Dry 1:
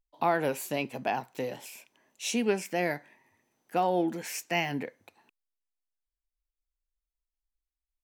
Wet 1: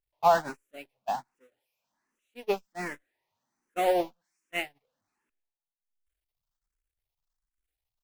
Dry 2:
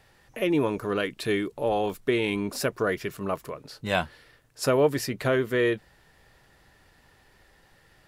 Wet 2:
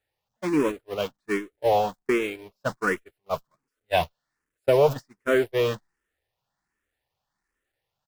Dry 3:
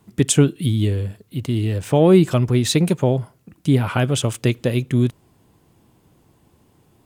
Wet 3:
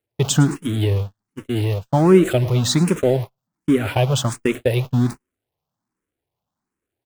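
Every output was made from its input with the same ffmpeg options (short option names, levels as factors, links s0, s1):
-filter_complex "[0:a]aeval=exprs='val(0)+0.5*0.0562*sgn(val(0))':c=same,equalizer=f=990:t=o:w=2.5:g=4.5,aecho=1:1:109|218|327|436|545:0.112|0.0662|0.0391|0.023|0.0136,agate=range=0.00282:threshold=0.112:ratio=16:detection=peak,asplit=2[s0][s1];[s1]afreqshift=1.3[s2];[s0][s2]amix=inputs=2:normalize=1"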